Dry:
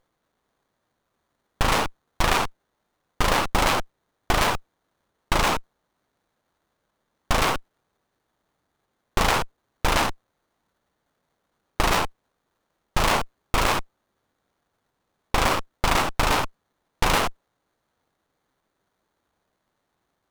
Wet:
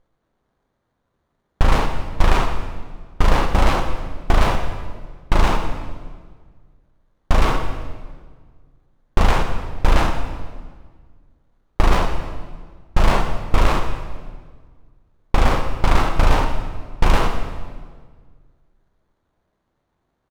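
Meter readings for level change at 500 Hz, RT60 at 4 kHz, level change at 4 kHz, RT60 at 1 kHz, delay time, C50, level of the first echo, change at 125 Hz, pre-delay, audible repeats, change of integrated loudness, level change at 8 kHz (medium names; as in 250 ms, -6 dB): +3.5 dB, 1.3 s, -3.0 dB, 1.5 s, 121 ms, 6.5 dB, -16.0 dB, +9.5 dB, 13 ms, 1, +2.0 dB, -6.0 dB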